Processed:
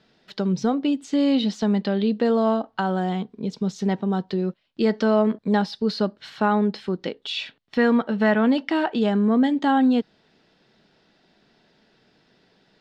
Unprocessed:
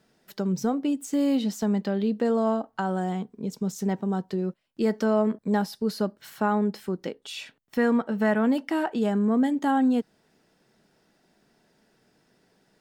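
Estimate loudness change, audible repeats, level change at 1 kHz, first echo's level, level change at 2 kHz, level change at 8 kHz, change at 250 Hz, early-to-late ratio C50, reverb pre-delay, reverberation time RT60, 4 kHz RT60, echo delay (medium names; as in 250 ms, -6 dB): +3.5 dB, no echo, +4.0 dB, no echo, +5.0 dB, no reading, +3.5 dB, no reverb, no reverb, no reverb, no reverb, no echo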